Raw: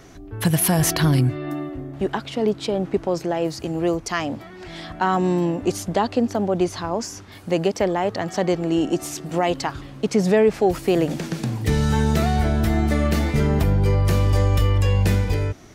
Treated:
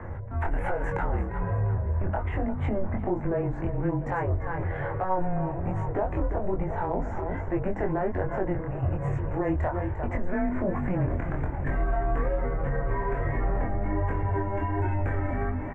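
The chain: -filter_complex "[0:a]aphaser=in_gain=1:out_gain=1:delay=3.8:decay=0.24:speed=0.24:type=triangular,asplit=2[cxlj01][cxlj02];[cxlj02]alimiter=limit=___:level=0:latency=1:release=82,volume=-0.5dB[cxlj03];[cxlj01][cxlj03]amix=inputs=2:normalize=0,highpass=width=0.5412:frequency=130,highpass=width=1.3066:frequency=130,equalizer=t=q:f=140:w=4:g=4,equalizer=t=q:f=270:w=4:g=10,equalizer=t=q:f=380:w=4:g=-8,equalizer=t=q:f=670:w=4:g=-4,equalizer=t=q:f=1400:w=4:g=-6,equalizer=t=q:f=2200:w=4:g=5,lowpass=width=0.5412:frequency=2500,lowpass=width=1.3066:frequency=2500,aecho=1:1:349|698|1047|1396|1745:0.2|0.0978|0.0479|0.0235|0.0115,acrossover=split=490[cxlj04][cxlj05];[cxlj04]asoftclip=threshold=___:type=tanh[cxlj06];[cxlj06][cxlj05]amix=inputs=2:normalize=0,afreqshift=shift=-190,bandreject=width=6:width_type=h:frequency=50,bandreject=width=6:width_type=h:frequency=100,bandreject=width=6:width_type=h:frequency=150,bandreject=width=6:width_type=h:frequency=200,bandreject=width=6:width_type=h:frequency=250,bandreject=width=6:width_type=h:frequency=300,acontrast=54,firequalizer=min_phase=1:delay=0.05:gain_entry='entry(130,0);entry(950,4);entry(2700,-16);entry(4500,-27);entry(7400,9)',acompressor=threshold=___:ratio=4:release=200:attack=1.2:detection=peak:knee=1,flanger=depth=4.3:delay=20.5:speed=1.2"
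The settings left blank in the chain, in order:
-13.5dB, -17dB, -21dB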